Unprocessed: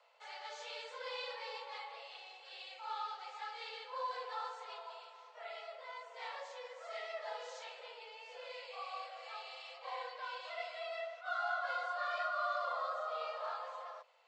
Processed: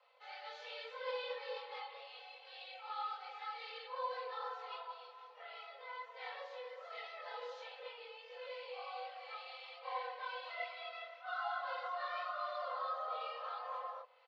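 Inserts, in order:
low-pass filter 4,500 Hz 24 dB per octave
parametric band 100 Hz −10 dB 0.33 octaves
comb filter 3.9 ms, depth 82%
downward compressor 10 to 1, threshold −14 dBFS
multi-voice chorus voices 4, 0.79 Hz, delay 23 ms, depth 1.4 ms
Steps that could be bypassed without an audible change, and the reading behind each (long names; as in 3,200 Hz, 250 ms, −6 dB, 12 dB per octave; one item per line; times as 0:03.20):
parametric band 100 Hz: nothing at its input below 400 Hz
downward compressor, threshold −14 dBFS: peak of its input −25.5 dBFS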